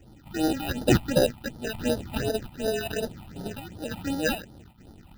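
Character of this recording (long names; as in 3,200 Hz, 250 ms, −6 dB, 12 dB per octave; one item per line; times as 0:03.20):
aliases and images of a low sample rate 1,100 Hz, jitter 0%
sample-and-hold tremolo 2.3 Hz, depth 75%
phaser sweep stages 6, 2.7 Hz, lowest notch 420–2,400 Hz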